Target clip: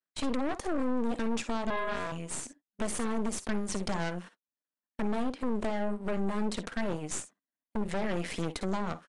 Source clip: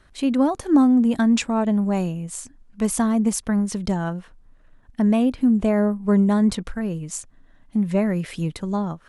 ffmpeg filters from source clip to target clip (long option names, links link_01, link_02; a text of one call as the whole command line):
ffmpeg -i in.wav -filter_complex "[0:a]aeval=exprs='if(lt(val(0),0),0.447*val(0),val(0))':channel_layout=same,highpass=frequency=210:width=0.5412,highpass=frequency=210:width=1.3066,agate=range=-37dB:threshold=-48dB:ratio=16:detection=peak,alimiter=limit=-20.5dB:level=0:latency=1:release=156,acompressor=threshold=-30dB:ratio=6,asettb=1/sr,asplit=3[link_01][link_02][link_03];[link_01]atrim=end=1.704[link_04];[link_02]atrim=start=1.7:end=2.12,asetpts=PTS-STARTPTS,afade=type=in:duration=0.004:curve=qsin,afade=type=out:start_time=0.416:duration=0.004:curve=qsin,aeval=exprs='val(0)*sin(2*PI*830*n/s)':channel_layout=same[link_05];[link_03]atrim=start=2.116[link_06];[link_04][link_05]acrossfade=duration=0.004:curve1=hsin:curve2=qsin[link_07];[link_07][link_06]acrossfade=duration=0.004:curve1=qsin:curve2=hsin,asplit=2[link_08][link_09];[link_09]aecho=0:1:52|62:0.168|0.15[link_10];[link_08][link_10]amix=inputs=2:normalize=0,aeval=exprs='0.1*(cos(1*acos(clip(val(0)/0.1,-1,1)))-cos(1*PI/2))+0.0282*(cos(3*acos(clip(val(0)/0.1,-1,1)))-cos(3*PI/2))+0.0224*(cos(5*acos(clip(val(0)/0.1,-1,1)))-cos(5*PI/2))+0.02*(cos(8*acos(clip(val(0)/0.1,-1,1)))-cos(8*PI/2))':channel_layout=same,aresample=22050,aresample=44100" out.wav